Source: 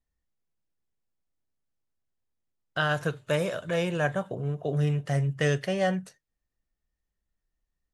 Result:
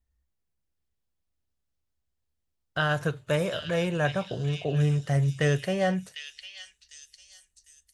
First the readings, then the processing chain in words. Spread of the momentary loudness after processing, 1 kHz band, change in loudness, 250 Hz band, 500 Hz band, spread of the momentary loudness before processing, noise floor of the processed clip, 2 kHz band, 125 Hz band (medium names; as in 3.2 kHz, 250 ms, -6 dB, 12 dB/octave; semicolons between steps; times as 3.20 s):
16 LU, 0.0 dB, +1.0 dB, +1.5 dB, 0.0 dB, 5 LU, -79 dBFS, 0.0 dB, +2.0 dB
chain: peaking EQ 65 Hz +13 dB 1 oct; repeats whose band climbs or falls 751 ms, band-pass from 3.7 kHz, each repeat 0.7 oct, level -1 dB